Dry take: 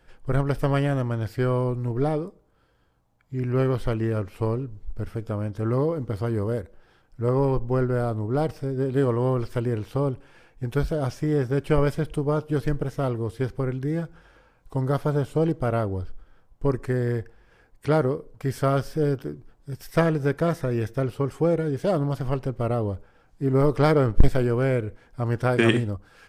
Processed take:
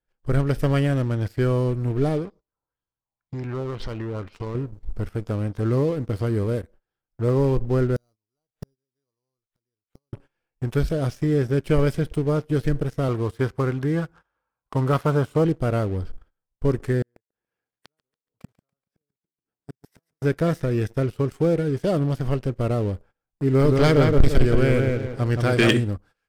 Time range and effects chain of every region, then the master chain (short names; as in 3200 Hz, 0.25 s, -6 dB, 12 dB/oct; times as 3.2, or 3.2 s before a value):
2.25–4.55 bell 1000 Hz +5 dB 0.27 oct + compressor, threshold -29 dBFS + LFO low-pass sine 2 Hz 870–5600 Hz
7.96–10.13 sample-rate reducer 5300 Hz + flipped gate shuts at -25 dBFS, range -36 dB + mismatched tape noise reduction encoder only
13.08–15.45 HPF 46 Hz + bell 1100 Hz +11 dB 1.1 oct
17.02–20.22 flipped gate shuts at -26 dBFS, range -40 dB + HPF 140 Hz + lo-fi delay 0.142 s, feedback 55%, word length 10-bit, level -6 dB
23.47–25.73 bell 3700 Hz +6 dB 2.3 oct + darkening echo 0.172 s, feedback 40%, low-pass 2200 Hz, level -3 dB
whole clip: sample leveller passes 2; dynamic EQ 910 Hz, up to -7 dB, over -33 dBFS, Q 1.2; gate -41 dBFS, range -20 dB; gain -4.5 dB